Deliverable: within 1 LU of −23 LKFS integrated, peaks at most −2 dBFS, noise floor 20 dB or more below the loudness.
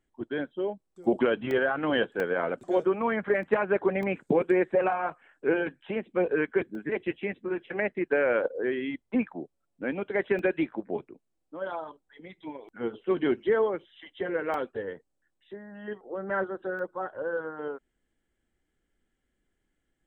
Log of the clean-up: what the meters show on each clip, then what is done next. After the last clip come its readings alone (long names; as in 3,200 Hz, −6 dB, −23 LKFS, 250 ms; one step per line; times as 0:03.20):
number of dropouts 8; longest dropout 1.4 ms; integrated loudness −29.0 LKFS; sample peak −11.0 dBFS; target loudness −23.0 LKFS
→ repair the gap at 0:01.51/0:02.20/0:03.43/0:04.03/0:06.75/0:10.39/0:14.54/0:16.79, 1.4 ms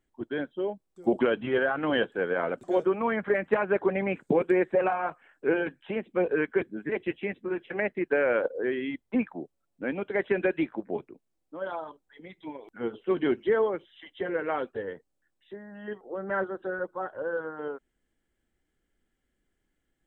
number of dropouts 0; integrated loudness −29.0 LKFS; sample peak −11.0 dBFS; target loudness −23.0 LKFS
→ level +6 dB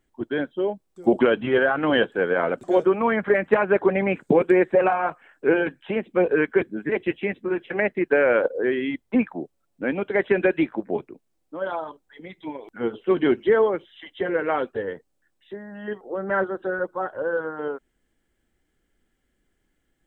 integrated loudness −23.0 LKFS; sample peak −5.0 dBFS; background noise floor −72 dBFS